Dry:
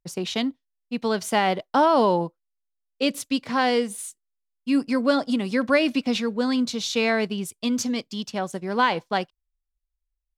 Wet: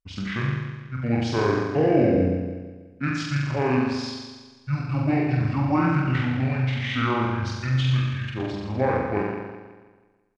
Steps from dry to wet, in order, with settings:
flutter between parallel walls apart 7 metres, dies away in 1.4 s
pitch shifter −11 semitones
level −4 dB

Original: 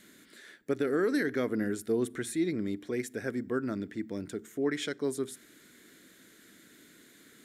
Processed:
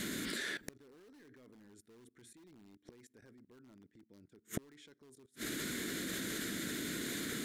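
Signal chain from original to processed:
low-shelf EQ 290 Hz +6.5 dB
in parallel at −8.5 dB: wrap-around overflow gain 22.5 dB
on the sum: output level in coarse steps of 19 dB
gate with flip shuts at −42 dBFS, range −38 dB
parametric band 4,500 Hz +2.5 dB 1.7 octaves
level +16.5 dB

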